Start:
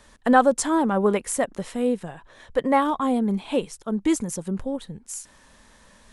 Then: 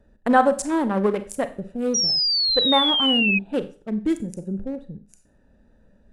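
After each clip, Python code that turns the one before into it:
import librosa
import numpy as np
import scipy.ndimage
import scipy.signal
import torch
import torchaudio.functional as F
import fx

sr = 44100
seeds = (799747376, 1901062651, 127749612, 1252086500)

y = fx.wiener(x, sr, points=41)
y = fx.rev_schroeder(y, sr, rt60_s=0.39, comb_ms=30, drr_db=11.0)
y = fx.spec_paint(y, sr, seeds[0], shape='fall', start_s=1.94, length_s=1.45, low_hz=2500.0, high_hz=5800.0, level_db=-21.0)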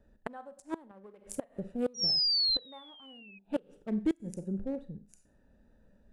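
y = fx.dynamic_eq(x, sr, hz=660.0, q=0.9, threshold_db=-32.0, ratio=4.0, max_db=4)
y = fx.gate_flip(y, sr, shuts_db=-13.0, range_db=-27)
y = y * librosa.db_to_amplitude(-6.5)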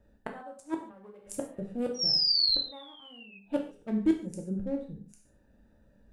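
y = fx.rev_gated(x, sr, seeds[1], gate_ms=170, shape='falling', drr_db=2.0)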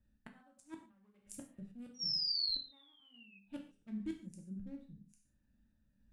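y = fx.curve_eq(x, sr, hz=(240.0, 460.0, 2400.0), db=(0, -16, 0))
y = fx.tremolo_random(y, sr, seeds[2], hz=3.5, depth_pct=55)
y = y * librosa.db_to_amplitude(-8.5)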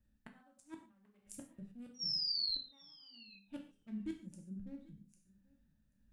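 y = x + 10.0 ** (-23.5 / 20.0) * np.pad(x, (int(785 * sr / 1000.0), 0))[:len(x)]
y = y * librosa.db_to_amplitude(-1.0)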